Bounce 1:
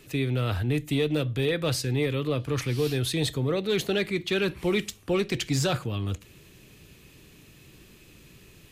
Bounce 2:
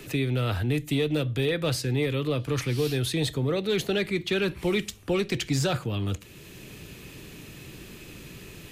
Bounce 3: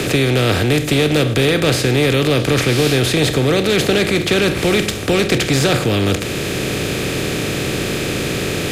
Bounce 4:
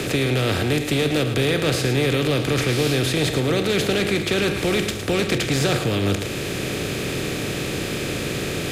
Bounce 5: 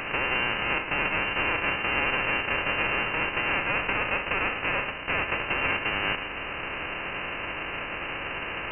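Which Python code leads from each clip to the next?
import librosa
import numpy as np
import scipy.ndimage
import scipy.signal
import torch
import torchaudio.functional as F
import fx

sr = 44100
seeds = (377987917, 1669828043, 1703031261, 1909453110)

y1 = fx.notch(x, sr, hz=1100.0, q=29.0)
y1 = fx.band_squash(y1, sr, depth_pct=40)
y2 = fx.bin_compress(y1, sr, power=0.4)
y2 = F.gain(torch.from_numpy(y2), 6.5).numpy()
y3 = y2 + 10.0 ** (-9.5 / 20.0) * np.pad(y2, (int(110 * sr / 1000.0), 0))[:len(y2)]
y3 = F.gain(torch.from_numpy(y3), -6.0).numpy()
y4 = fx.envelope_flatten(y3, sr, power=0.1)
y4 = fx.air_absorb(y4, sr, metres=140.0)
y4 = fx.freq_invert(y4, sr, carrier_hz=2900)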